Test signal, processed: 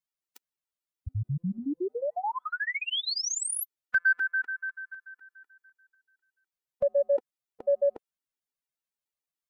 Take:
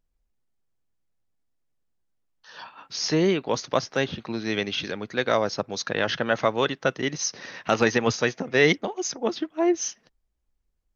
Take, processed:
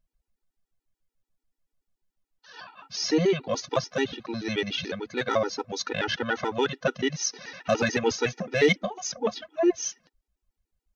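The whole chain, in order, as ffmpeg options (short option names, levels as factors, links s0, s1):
-af "acontrast=51,afftfilt=real='re*gt(sin(2*PI*6.9*pts/sr)*(1-2*mod(floor(b*sr/1024/250),2)),0)':imag='im*gt(sin(2*PI*6.9*pts/sr)*(1-2*mod(floor(b*sr/1024/250),2)),0)':win_size=1024:overlap=0.75,volume=0.631"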